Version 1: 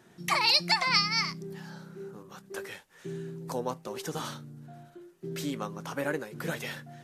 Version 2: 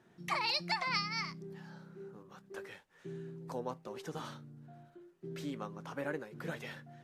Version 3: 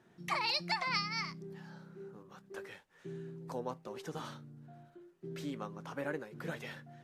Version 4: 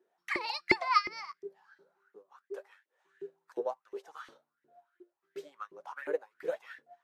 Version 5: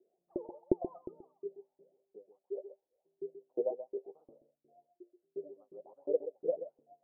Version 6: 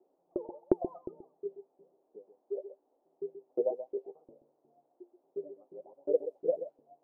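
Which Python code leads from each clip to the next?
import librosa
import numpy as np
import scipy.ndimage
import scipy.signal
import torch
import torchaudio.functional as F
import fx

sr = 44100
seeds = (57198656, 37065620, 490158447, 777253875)

y1 = fx.high_shelf(x, sr, hz=5200.0, db=-11.5)
y1 = F.gain(torch.from_numpy(y1), -6.5).numpy()
y2 = y1
y3 = fx.filter_lfo_highpass(y2, sr, shape='saw_up', hz=2.8, low_hz=350.0, high_hz=2100.0, q=7.7)
y3 = fx.upward_expand(y3, sr, threshold_db=-52.0, expansion=1.5)
y4 = scipy.signal.sosfilt(scipy.signal.butter(8, 660.0, 'lowpass', fs=sr, output='sos'), y3)
y4 = y4 + 10.0 ** (-11.0 / 20.0) * np.pad(y4, (int(130 * sr / 1000.0), 0))[:len(y4)]
y4 = F.gain(torch.from_numpy(y4), 2.0).numpy()
y5 = fx.env_lowpass(y4, sr, base_hz=460.0, full_db=-32.0)
y5 = fx.dmg_noise_band(y5, sr, seeds[0], low_hz=270.0, high_hz=800.0, level_db=-79.0)
y5 = F.gain(torch.from_numpy(y5), 3.0).numpy()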